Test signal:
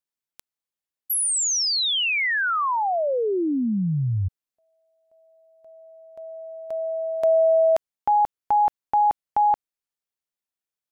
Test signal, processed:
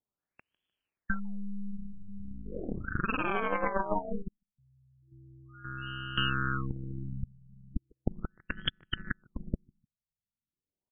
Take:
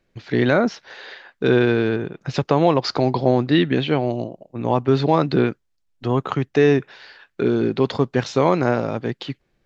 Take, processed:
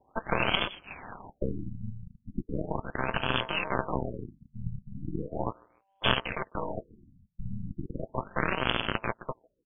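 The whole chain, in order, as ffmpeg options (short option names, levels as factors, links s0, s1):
-filter_complex "[0:a]equalizer=f=930:w=1.2:g=9.5,aeval=exprs='val(0)*sin(2*PI*780*n/s)':c=same,alimiter=limit=0.376:level=0:latency=1:release=14,afftfilt=real='re*lt(hypot(re,im),0.447)':imag='im*lt(hypot(re,im),0.447)':win_size=1024:overlap=0.75,acompressor=threshold=0.0251:ratio=10:attack=31:release=954:knee=6:detection=rms,asplit=2[s0][s1];[s1]adelay=151,lowpass=f=3300:p=1,volume=0.0631,asplit=2[s2][s3];[s3]adelay=151,lowpass=f=3300:p=1,volume=0.38[s4];[s2][s4]amix=inputs=2:normalize=0[s5];[s0][s5]amix=inputs=2:normalize=0,aeval=exprs='0.158*(cos(1*acos(clip(val(0)/0.158,-1,1)))-cos(1*PI/2))+0.0398*(cos(8*acos(clip(val(0)/0.158,-1,1)))-cos(8*PI/2))':c=same,tremolo=f=200:d=0.824,aexciter=amount=8.4:drive=5.7:freq=2900,aresample=32000,aresample=44100,adynamicequalizer=threshold=0.0112:dfrequency=5700:dqfactor=1.8:tfrequency=5700:tqfactor=1.8:attack=5:release=100:ratio=0.45:range=2:mode=cutabove:tftype=bell,afftfilt=real='re*lt(b*sr/1024,210*pow(3500/210,0.5+0.5*sin(2*PI*0.37*pts/sr)))':imag='im*lt(b*sr/1024,210*pow(3500/210,0.5+0.5*sin(2*PI*0.37*pts/sr)))':win_size=1024:overlap=0.75,volume=2.66"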